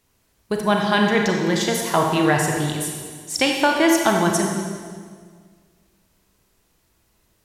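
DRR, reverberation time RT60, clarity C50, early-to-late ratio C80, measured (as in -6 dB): 1.0 dB, 1.8 s, 2.5 dB, 4.0 dB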